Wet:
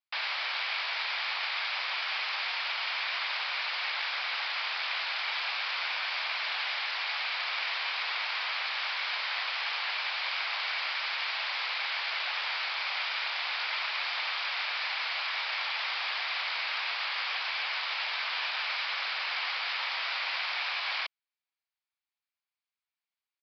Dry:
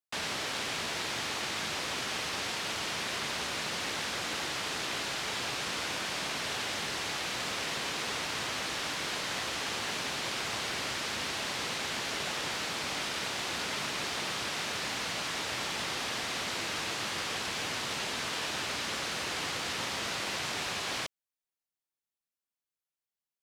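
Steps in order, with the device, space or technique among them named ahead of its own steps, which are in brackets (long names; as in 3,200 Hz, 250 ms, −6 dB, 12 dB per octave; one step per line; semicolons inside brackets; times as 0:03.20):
musical greeting card (downsampling to 11,025 Hz; high-pass filter 770 Hz 24 dB per octave; parametric band 2,300 Hz +6 dB 0.25 octaves)
level +2 dB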